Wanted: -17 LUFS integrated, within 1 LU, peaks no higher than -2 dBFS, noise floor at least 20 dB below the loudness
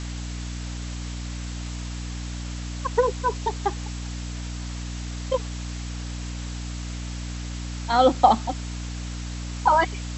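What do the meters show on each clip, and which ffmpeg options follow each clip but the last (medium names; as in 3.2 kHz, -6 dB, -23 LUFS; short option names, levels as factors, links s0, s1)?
hum 60 Hz; highest harmonic 300 Hz; hum level -30 dBFS; noise floor -33 dBFS; noise floor target -48 dBFS; loudness -27.5 LUFS; peak level -4.0 dBFS; loudness target -17.0 LUFS
-> -af "bandreject=f=60:t=h:w=4,bandreject=f=120:t=h:w=4,bandreject=f=180:t=h:w=4,bandreject=f=240:t=h:w=4,bandreject=f=300:t=h:w=4"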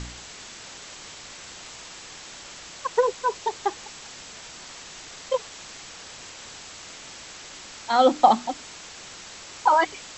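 hum not found; noise floor -43 dBFS; noise floor target -44 dBFS
-> -af "afftdn=nr=6:nf=-43"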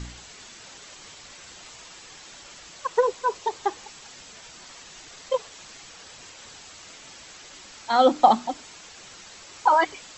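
noise floor -46 dBFS; loudness -23.5 LUFS; peak level -4.0 dBFS; loudness target -17.0 LUFS
-> -af "volume=2.11,alimiter=limit=0.794:level=0:latency=1"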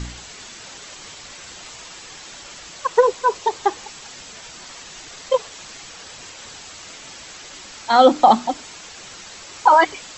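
loudness -17.5 LUFS; peak level -2.0 dBFS; noise floor -40 dBFS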